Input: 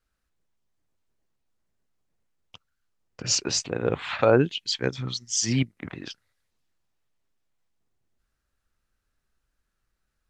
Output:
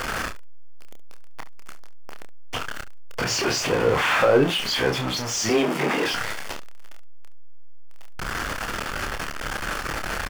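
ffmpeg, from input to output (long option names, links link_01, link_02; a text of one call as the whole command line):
ffmpeg -i in.wav -filter_complex "[0:a]aeval=exprs='val(0)+0.5*0.1*sgn(val(0))':channel_layout=same,bandreject=frequency=3900:width=9.5,asettb=1/sr,asplit=3[link_01][link_02][link_03];[link_01]atrim=end=5.494[link_04];[link_02]atrim=start=5.49:end=6.05,asetpts=PTS-STARTPTS,afade=type=in:duration=0.004:curve=qsin,afade=type=out:start_time=0.556:duration=0.004:curve=qsin,afreqshift=140[link_05];[link_03]atrim=start=6.046[link_06];[link_04][link_05]acrossfade=duration=0.004:curve1=hsin:curve2=qsin[link_07];[link_07][link_06]acrossfade=duration=0.004:curve1=qsin:curve2=hsin,asplit=2[link_08][link_09];[link_09]highpass=frequency=720:poles=1,volume=15dB,asoftclip=type=tanh:threshold=-4.5dB[link_10];[link_08][link_10]amix=inputs=2:normalize=0,lowpass=frequency=1400:poles=1,volume=-6dB,asplit=2[link_11][link_12];[link_12]aecho=0:1:28|70:0.531|0.168[link_13];[link_11][link_13]amix=inputs=2:normalize=0,volume=-2.5dB" out.wav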